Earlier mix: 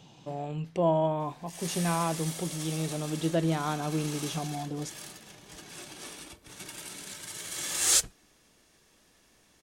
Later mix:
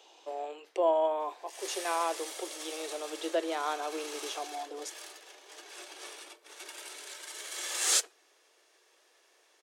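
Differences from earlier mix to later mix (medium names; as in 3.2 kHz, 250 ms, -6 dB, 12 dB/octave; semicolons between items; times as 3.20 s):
background: add treble shelf 8 kHz -8 dB; master: add steep high-pass 360 Hz 48 dB/octave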